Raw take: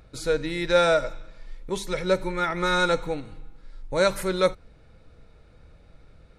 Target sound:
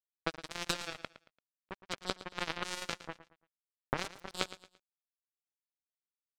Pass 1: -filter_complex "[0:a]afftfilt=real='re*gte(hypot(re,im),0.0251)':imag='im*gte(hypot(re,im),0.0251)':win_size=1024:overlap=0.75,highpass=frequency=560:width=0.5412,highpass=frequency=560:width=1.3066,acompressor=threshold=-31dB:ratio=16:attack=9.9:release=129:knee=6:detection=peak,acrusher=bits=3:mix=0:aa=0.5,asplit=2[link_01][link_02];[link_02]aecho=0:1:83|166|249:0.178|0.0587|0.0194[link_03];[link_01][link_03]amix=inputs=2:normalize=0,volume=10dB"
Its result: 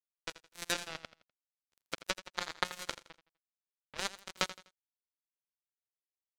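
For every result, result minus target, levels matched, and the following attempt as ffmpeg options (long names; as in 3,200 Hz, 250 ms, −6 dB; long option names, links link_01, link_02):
125 Hz band −7.0 dB; echo 30 ms early
-filter_complex "[0:a]afftfilt=real='re*gte(hypot(re,im),0.0251)':imag='im*gte(hypot(re,im),0.0251)':win_size=1024:overlap=0.75,highpass=frequency=140:width=0.5412,highpass=frequency=140:width=1.3066,acompressor=threshold=-31dB:ratio=16:attack=9.9:release=129:knee=6:detection=peak,acrusher=bits=3:mix=0:aa=0.5,asplit=2[link_01][link_02];[link_02]aecho=0:1:83|166|249:0.178|0.0587|0.0194[link_03];[link_01][link_03]amix=inputs=2:normalize=0,volume=10dB"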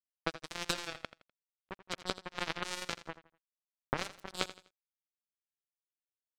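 echo 30 ms early
-filter_complex "[0:a]afftfilt=real='re*gte(hypot(re,im),0.0251)':imag='im*gte(hypot(re,im),0.0251)':win_size=1024:overlap=0.75,highpass=frequency=140:width=0.5412,highpass=frequency=140:width=1.3066,acompressor=threshold=-31dB:ratio=16:attack=9.9:release=129:knee=6:detection=peak,acrusher=bits=3:mix=0:aa=0.5,asplit=2[link_01][link_02];[link_02]aecho=0:1:113|226|339:0.178|0.0587|0.0194[link_03];[link_01][link_03]amix=inputs=2:normalize=0,volume=10dB"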